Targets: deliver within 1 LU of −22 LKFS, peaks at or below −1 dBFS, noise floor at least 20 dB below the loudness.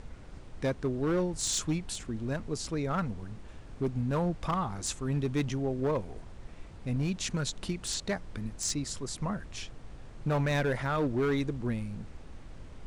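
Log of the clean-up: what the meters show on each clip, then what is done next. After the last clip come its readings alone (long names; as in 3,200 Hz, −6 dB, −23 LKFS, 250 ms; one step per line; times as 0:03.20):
share of clipped samples 1.9%; peaks flattened at −23.5 dBFS; background noise floor −48 dBFS; target noise floor −53 dBFS; integrated loudness −32.5 LKFS; sample peak −23.5 dBFS; target loudness −22.0 LKFS
→ clipped peaks rebuilt −23.5 dBFS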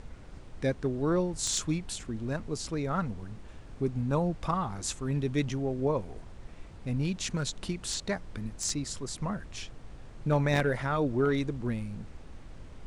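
share of clipped samples 0.0%; background noise floor −48 dBFS; target noise floor −52 dBFS
→ noise reduction from a noise print 6 dB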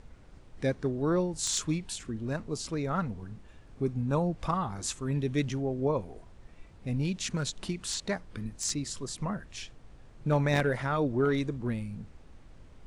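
background noise floor −53 dBFS; integrated loudness −31.5 LKFS; sample peak −14.5 dBFS; target loudness −22.0 LKFS
→ level +9.5 dB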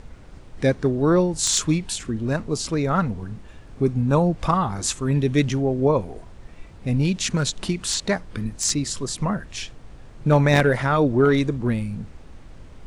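integrated loudness −22.0 LKFS; sample peak −5.0 dBFS; background noise floor −44 dBFS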